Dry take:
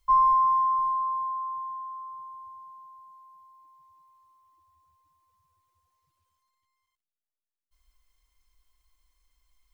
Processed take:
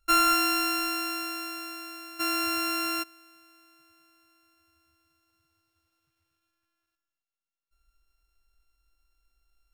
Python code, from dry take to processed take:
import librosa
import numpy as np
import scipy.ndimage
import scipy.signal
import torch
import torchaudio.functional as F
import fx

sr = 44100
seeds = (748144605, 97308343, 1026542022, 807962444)

y = np.r_[np.sort(x[:len(x) // 32 * 32].reshape(-1, 32), axis=1).ravel(), x[len(x) // 32 * 32:]]
y = fx.rev_gated(y, sr, seeds[0], gate_ms=300, shape='rising', drr_db=10.5)
y = fx.env_flatten(y, sr, amount_pct=70, at=(2.19, 3.02), fade=0.02)
y = y * 10.0 ** (-2.0 / 20.0)